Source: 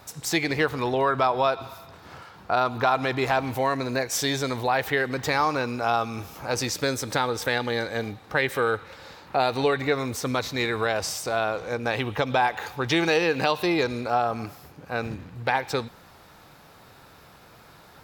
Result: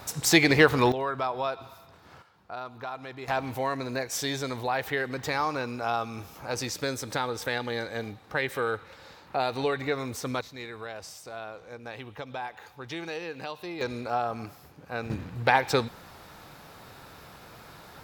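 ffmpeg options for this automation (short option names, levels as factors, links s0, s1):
-af "asetnsamples=n=441:p=0,asendcmd='0.92 volume volume -7.5dB;2.22 volume volume -15dB;3.28 volume volume -5dB;10.41 volume volume -14dB;13.81 volume volume -5dB;15.1 volume volume 2.5dB',volume=1.78"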